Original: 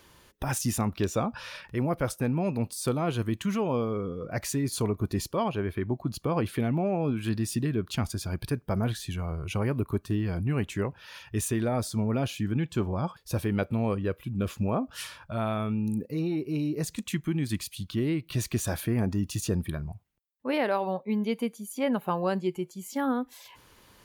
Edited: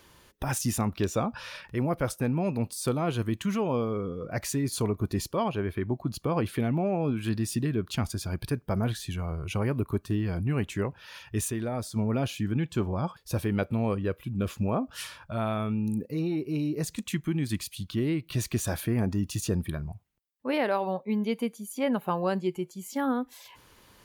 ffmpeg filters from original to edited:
-filter_complex "[0:a]asplit=3[a][b][c];[a]atrim=end=11.502[d];[b]atrim=start=11.498:end=11.962,asetpts=PTS-STARTPTS,volume=-4dB[e];[c]atrim=start=11.958[f];[d][e]acrossfade=d=0.004:c1=hsin:c2=hsin[g];[g][f]acrossfade=d=0.004:c1=hsin:c2=hsin"

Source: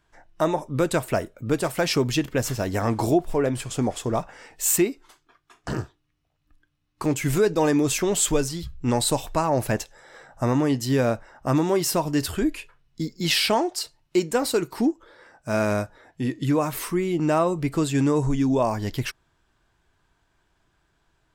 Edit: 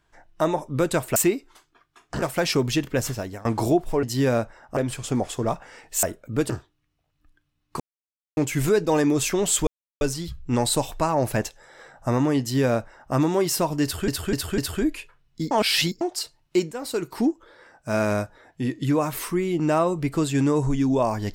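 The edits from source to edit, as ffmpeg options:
-filter_complex "[0:a]asplit=16[a][b][c][d][e][f][g][h][i][j][k][l][m][n][o][p];[a]atrim=end=1.162[q];[b]atrim=start=4.698:end=5.762[r];[c]atrim=start=1.628:end=2.86,asetpts=PTS-STARTPTS,afade=t=out:st=0.832:d=0.4:silence=0.0630957[s];[d]atrim=start=2.86:end=3.442,asetpts=PTS-STARTPTS,afade=t=in:d=0.004:c=hsin:silence=0.0630957[t];[e]atrim=start=10.748:end=11.492[u];[f]atrim=start=3.438:end=4.702[v];[g]atrim=start=1.158:end=1.632[w];[h]atrim=start=5.758:end=7.06,asetpts=PTS-STARTPTS,afade=t=out:st=1.298:d=0.004:c=hsin,apad=pad_dur=0.57[x];[i]atrim=start=7.06:end=8.36,asetpts=PTS-STARTPTS,afade=t=in:d=0.004:c=hsin,afade=t=out:st=1.296:d=0.004:c=hsin,apad=pad_dur=0.34[y];[j]atrim=start=8.36:end=12.432,asetpts=PTS-STARTPTS,afade=t=in:d=0.004:c=hsin[z];[k]atrim=start=12.178:end=12.432[aa];[l]atrim=start=12.178:end=12.432[ab];[m]atrim=start=12.178:end=13.112[ac];[n]atrim=start=13.108:end=13.612,asetpts=PTS-STARTPTS,areverse[ad];[o]atrim=start=13.608:end=14.32,asetpts=PTS-STARTPTS,afade=t=out:st=0.708:d=0.004:c=hsin:silence=0.211349[ae];[p]atrim=start=14.32,asetpts=PTS-STARTPTS,afade=t=in:d=0.45:silence=0.211349[af];[q][r]acrossfade=d=0.004:c1=hsin:c2=hsin[ag];[s][t]concat=n=2:v=0:a=1[ah];[ag][ah]acrossfade=d=0.004:c1=hsin:c2=hsin[ai];[ai][u]acrossfade=d=0.004:c1=hsin:c2=hsin[aj];[aj][v]acrossfade=d=0.004:c1=hsin:c2=hsin[ak];[ak][w]acrossfade=d=0.004:c1=hsin:c2=hsin[al];[x][y][z]concat=n=3:v=0:a=1[am];[al][am]acrossfade=d=0.004:c1=hsin:c2=hsin[an];[an][aa]acrossfade=d=0.004:c1=hsin:c2=hsin[ao];[ao][ab]acrossfade=d=0.004:c1=hsin:c2=hsin[ap];[ap][ac]acrossfade=d=0.004:c1=hsin:c2=hsin[aq];[aq][ad]acrossfade=d=0.004:c1=hsin:c2=hsin[ar];[ae][af]concat=n=2:v=0:a=1[as];[ar][as]acrossfade=d=0.004:c1=hsin:c2=hsin"

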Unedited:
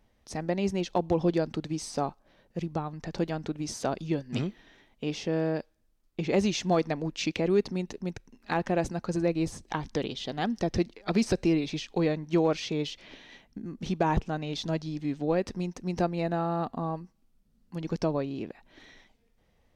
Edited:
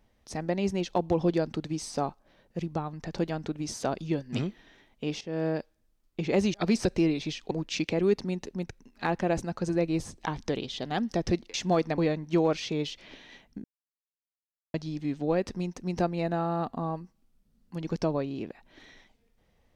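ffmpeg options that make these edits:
-filter_complex "[0:a]asplit=8[a][b][c][d][e][f][g][h];[a]atrim=end=5.21,asetpts=PTS-STARTPTS,afade=t=out:st=5.206:d=0.004:c=hsin:silence=0.177828[i];[b]atrim=start=5.21:end=6.542,asetpts=PTS-STARTPTS,afade=t=in:d=0.25:silence=0.177828[j];[c]atrim=start=11.008:end=11.982[k];[d]atrim=start=6.978:end=11.012[l];[e]atrim=start=6.538:end=6.982[m];[f]atrim=start=11.978:end=13.64,asetpts=PTS-STARTPTS,afade=t=out:st=1.658:d=0.004:c=hsin[n];[g]atrim=start=13.64:end=14.74,asetpts=PTS-STARTPTS,volume=0[o];[h]atrim=start=14.74,asetpts=PTS-STARTPTS,afade=t=in:d=0.004:c=hsin[p];[i][j]concat=n=2:v=0:a=1[q];[q][k]acrossfade=d=0.004:c1=hsin:c2=hsin[r];[r][l]acrossfade=d=0.004:c1=hsin:c2=hsin[s];[s][m]acrossfade=d=0.004:c1=hsin:c2=hsin[t];[n][o][p]concat=n=3:v=0:a=1[u];[t][u]acrossfade=d=0.004:c1=hsin:c2=hsin"

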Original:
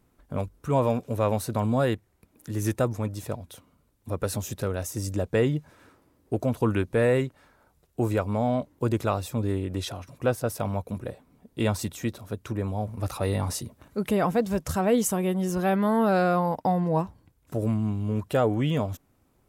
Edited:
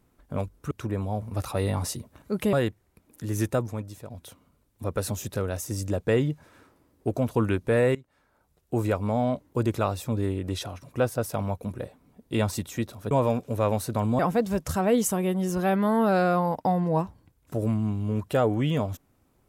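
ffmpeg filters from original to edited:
-filter_complex "[0:a]asplit=7[a][b][c][d][e][f][g];[a]atrim=end=0.712[h];[b]atrim=start=12.368:end=14.192[i];[c]atrim=start=1.788:end=3.36,asetpts=PTS-STARTPTS,afade=t=out:st=0.952:d=0.62:silence=0.266073[j];[d]atrim=start=3.36:end=7.21,asetpts=PTS-STARTPTS,afade=t=in:d=0.004:c=hsin:silence=0.266073,afade=t=out:st=3.846:d=0.004:c=hsin:silence=0.11885[k];[e]atrim=start=7.21:end=12.372,asetpts=PTS-STARTPTS,afade=t=in:d=0.89:silence=0.11885[l];[f]atrim=start=0.708:end=1.792[m];[g]atrim=start=14.188[n];[h][i]acrossfade=d=0.004:c1=hsin:c2=hsin[o];[j][k][l]concat=n=3:v=0:a=1[p];[o][p]acrossfade=d=0.004:c1=hsin:c2=hsin[q];[q][m]acrossfade=d=0.004:c1=hsin:c2=hsin[r];[r][n]acrossfade=d=0.004:c1=hsin:c2=hsin"

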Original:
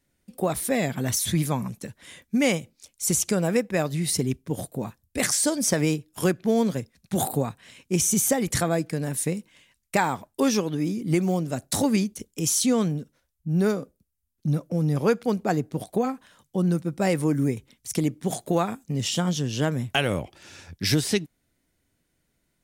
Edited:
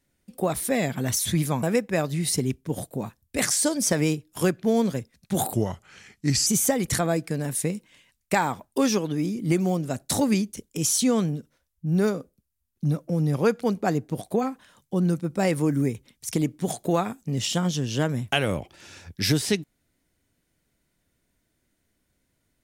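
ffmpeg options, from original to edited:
-filter_complex "[0:a]asplit=4[a][b][c][d];[a]atrim=end=1.632[e];[b]atrim=start=3.438:end=7.344[f];[c]atrim=start=7.34:end=8.09,asetpts=PTS-STARTPTS,asetrate=35280,aresample=44100[g];[d]atrim=start=8.086[h];[e][f]acrossfade=d=0.004:c1=hsin:c2=hsin[i];[i][g]acrossfade=d=0.004:c1=hsin:c2=hsin[j];[j][h]acrossfade=d=0.004:c1=hsin:c2=hsin"

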